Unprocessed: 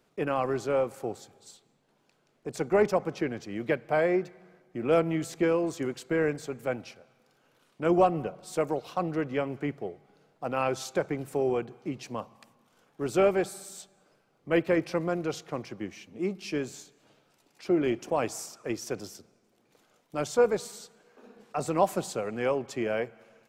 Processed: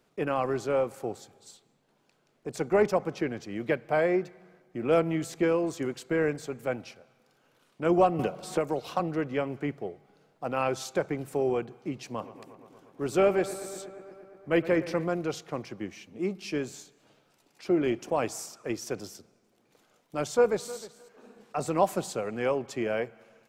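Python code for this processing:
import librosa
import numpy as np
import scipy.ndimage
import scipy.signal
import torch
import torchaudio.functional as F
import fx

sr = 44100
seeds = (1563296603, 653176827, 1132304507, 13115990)

y = fx.band_squash(x, sr, depth_pct=100, at=(8.19, 9.0))
y = fx.echo_bbd(y, sr, ms=117, stages=2048, feedback_pct=78, wet_db=-15.5, at=(12.18, 15.04), fade=0.02)
y = fx.echo_throw(y, sr, start_s=20.27, length_s=0.5, ms=310, feedback_pct=15, wet_db=-17.5)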